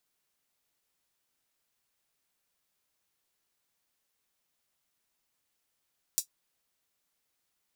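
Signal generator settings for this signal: closed hi-hat, high-pass 5900 Hz, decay 0.10 s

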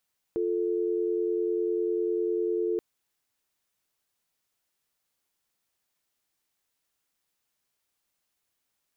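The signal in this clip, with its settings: call progress tone dial tone, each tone -27.5 dBFS 2.43 s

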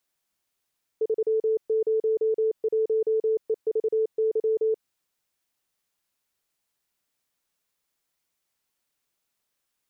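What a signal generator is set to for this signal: Morse "301EVY" 28 wpm 440 Hz -20 dBFS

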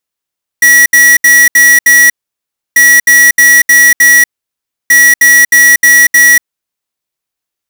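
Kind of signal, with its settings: beep pattern square 1930 Hz, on 0.24 s, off 0.07 s, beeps 5, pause 0.66 s, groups 3, -4 dBFS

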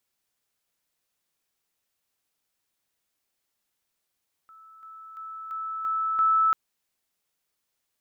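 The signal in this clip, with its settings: level ladder 1310 Hz -48 dBFS, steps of 6 dB, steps 6, 0.34 s 0.00 s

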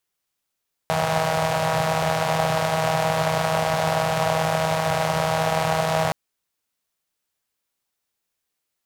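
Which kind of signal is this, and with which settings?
four-cylinder engine model, steady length 5.22 s, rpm 4800, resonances 140/660 Hz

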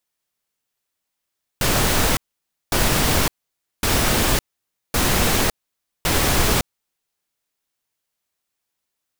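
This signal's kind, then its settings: noise bursts pink, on 0.56 s, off 0.55 s, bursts 5, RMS -18 dBFS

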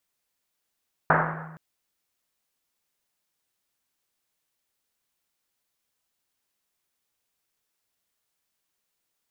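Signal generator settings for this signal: Risset drum length 0.47 s, pitch 160 Hz, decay 1.61 s, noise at 1100 Hz, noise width 1200 Hz, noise 65%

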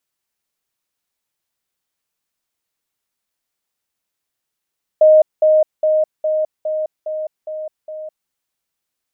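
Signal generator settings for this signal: level ladder 621 Hz -5.5 dBFS, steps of -3 dB, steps 8, 0.21 s 0.20 s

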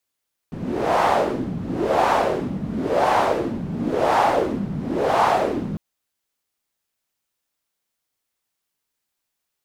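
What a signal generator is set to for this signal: wind-like swept noise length 5.25 s, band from 180 Hz, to 850 Hz, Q 3, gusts 5, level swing 10.5 dB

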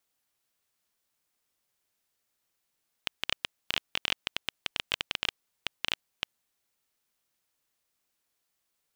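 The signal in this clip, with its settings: random clicks 12/s -9.5 dBFS 3.24 s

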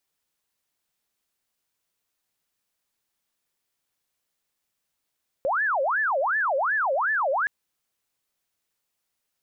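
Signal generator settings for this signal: siren wail 528–1760 Hz 2.7/s sine -21 dBFS 2.02 s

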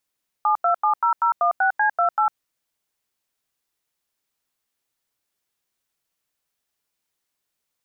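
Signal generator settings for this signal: DTMF "7270016C28", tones 0.103 s, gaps 89 ms, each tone -18.5 dBFS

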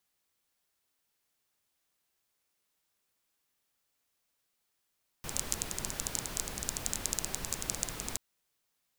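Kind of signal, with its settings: rain from filtered ticks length 2.93 s, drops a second 14, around 7100 Hz, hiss -2 dB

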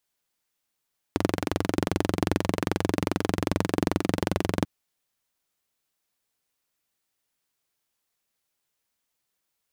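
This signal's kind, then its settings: single-cylinder engine model, steady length 3.49 s, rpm 2700, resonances 98/180/290 Hz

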